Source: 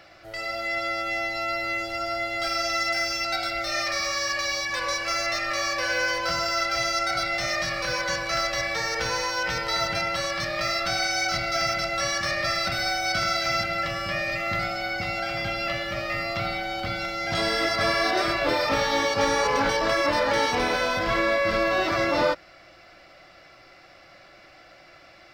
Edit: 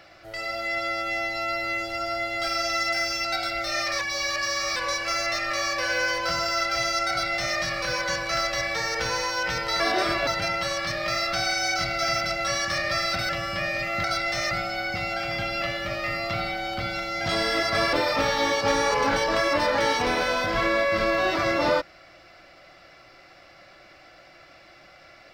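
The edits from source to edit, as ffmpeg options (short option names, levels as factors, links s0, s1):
-filter_complex "[0:a]asplit=9[s0][s1][s2][s3][s4][s5][s6][s7][s8];[s0]atrim=end=3.992[s9];[s1]atrim=start=3.988:end=4.762,asetpts=PTS-STARTPTS,areverse[s10];[s2]atrim=start=4.758:end=9.802[s11];[s3]atrim=start=17.988:end=18.462[s12];[s4]atrim=start=9.798:end=12.822[s13];[s5]atrim=start=13.818:end=14.572[s14];[s6]atrim=start=7.098:end=7.572[s15];[s7]atrim=start=14.568:end=17.992[s16];[s8]atrim=start=18.458[s17];[s9][s10]acrossfade=d=0.004:c1=hsin:c2=hsin[s18];[s18][s11]acrossfade=d=0.004:c1=hsin:c2=hsin[s19];[s19][s12]acrossfade=d=0.004:c1=hsin:c2=hsin[s20];[s20][s13]acrossfade=d=0.004:c1=hsin:c2=hsin[s21];[s21][s14]acrossfade=d=0.004:c1=hsin:c2=hsin[s22];[s22][s15]acrossfade=d=0.004:c1=hsin:c2=hsin[s23];[s23][s16]acrossfade=d=0.004:c1=hsin:c2=hsin[s24];[s24][s17]acrossfade=d=0.004:c1=hsin:c2=hsin"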